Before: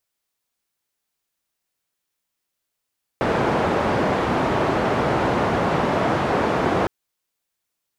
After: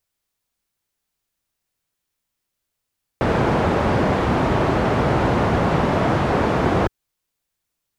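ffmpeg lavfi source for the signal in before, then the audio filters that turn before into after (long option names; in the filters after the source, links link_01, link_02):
-f lavfi -i "anoisesrc=color=white:duration=3.66:sample_rate=44100:seed=1,highpass=frequency=85,lowpass=frequency=840,volume=-1.5dB"
-af "lowshelf=frequency=140:gain=11"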